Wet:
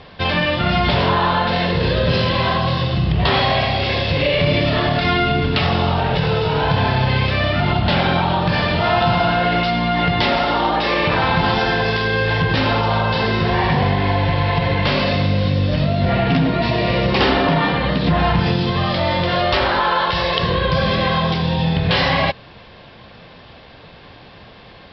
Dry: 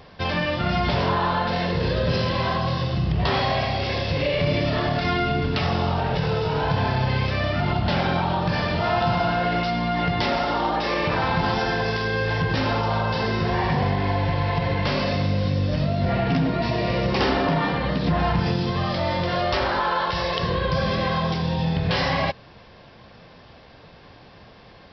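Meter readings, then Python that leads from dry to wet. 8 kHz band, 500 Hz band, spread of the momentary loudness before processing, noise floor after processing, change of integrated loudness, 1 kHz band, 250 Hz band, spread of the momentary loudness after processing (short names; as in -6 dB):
n/a, +5.0 dB, 2 LU, -42 dBFS, +5.5 dB, +5.5 dB, +5.0 dB, 2 LU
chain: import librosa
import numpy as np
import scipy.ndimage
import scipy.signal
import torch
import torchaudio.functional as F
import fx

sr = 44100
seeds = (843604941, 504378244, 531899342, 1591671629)

y = fx.lowpass_res(x, sr, hz=3700.0, q=1.5)
y = F.gain(torch.from_numpy(y), 5.0).numpy()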